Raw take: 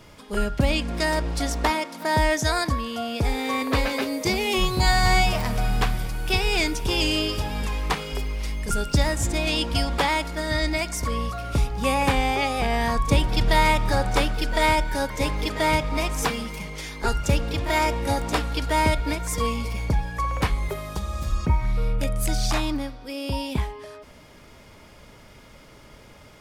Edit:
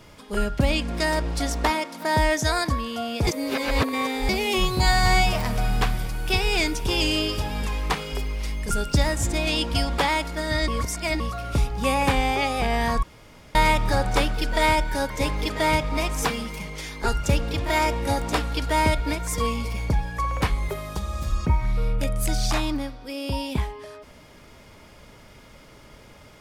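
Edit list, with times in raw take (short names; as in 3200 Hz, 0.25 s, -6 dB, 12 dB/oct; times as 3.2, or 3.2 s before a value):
3.27–4.29 reverse
10.68–11.2 reverse
13.03–13.55 room tone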